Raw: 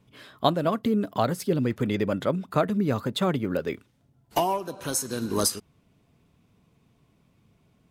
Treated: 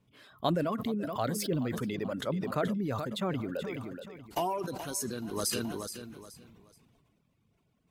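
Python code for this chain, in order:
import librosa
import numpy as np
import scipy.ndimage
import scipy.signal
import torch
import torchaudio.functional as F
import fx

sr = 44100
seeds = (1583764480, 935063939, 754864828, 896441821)

y = fx.law_mismatch(x, sr, coded='mu', at=(1.38, 1.81))
y = fx.dereverb_blind(y, sr, rt60_s=1.1)
y = fx.echo_feedback(y, sr, ms=426, feedback_pct=30, wet_db=-16.0)
y = fx.sustainer(y, sr, db_per_s=25.0)
y = F.gain(torch.from_numpy(y), -8.5).numpy()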